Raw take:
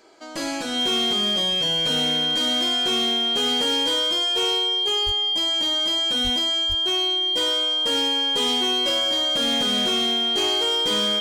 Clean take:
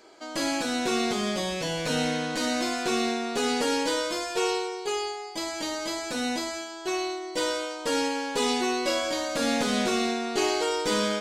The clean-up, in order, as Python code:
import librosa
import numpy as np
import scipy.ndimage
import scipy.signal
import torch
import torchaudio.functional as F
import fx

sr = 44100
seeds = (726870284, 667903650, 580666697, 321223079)

y = fx.fix_declip(x, sr, threshold_db=-17.0)
y = fx.notch(y, sr, hz=3200.0, q=30.0)
y = fx.highpass(y, sr, hz=140.0, slope=24, at=(5.05, 5.17), fade=0.02)
y = fx.highpass(y, sr, hz=140.0, slope=24, at=(6.23, 6.35), fade=0.02)
y = fx.highpass(y, sr, hz=140.0, slope=24, at=(6.68, 6.8), fade=0.02)